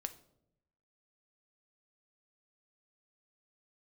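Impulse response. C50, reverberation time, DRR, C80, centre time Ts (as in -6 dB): 14.5 dB, 0.80 s, 8.5 dB, 19.0 dB, 5 ms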